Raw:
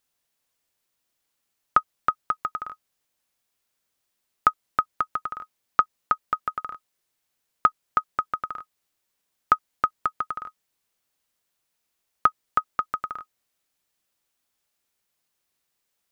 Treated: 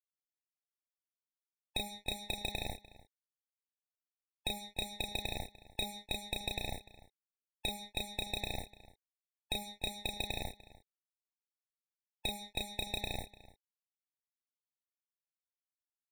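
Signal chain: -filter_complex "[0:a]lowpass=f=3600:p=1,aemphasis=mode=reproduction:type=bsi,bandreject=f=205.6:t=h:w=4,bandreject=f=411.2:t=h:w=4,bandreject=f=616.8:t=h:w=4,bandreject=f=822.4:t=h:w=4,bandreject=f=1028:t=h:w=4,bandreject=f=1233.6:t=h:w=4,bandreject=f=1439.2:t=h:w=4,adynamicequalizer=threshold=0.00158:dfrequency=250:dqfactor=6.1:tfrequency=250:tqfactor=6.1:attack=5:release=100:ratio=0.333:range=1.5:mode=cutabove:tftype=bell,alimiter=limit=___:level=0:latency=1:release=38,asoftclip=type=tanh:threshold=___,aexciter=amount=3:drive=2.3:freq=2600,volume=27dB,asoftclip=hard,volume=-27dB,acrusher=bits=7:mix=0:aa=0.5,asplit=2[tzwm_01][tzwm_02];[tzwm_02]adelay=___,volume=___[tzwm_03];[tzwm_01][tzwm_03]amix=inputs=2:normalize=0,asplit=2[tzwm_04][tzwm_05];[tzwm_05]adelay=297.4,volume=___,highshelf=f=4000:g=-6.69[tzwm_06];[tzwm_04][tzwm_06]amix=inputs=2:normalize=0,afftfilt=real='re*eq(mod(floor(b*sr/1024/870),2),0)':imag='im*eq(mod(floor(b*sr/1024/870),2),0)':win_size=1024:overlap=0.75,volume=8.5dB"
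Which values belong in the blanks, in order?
-14dB, -25dB, 33, -4dB, -18dB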